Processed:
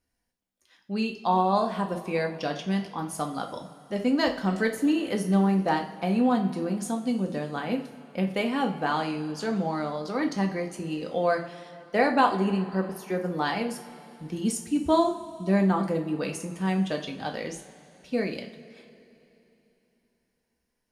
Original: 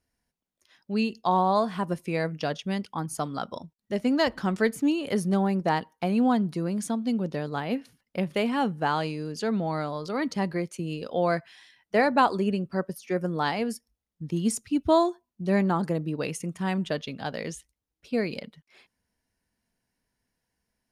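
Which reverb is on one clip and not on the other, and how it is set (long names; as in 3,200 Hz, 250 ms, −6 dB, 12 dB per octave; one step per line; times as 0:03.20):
coupled-rooms reverb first 0.39 s, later 3.3 s, from −18 dB, DRR 2.5 dB
level −2 dB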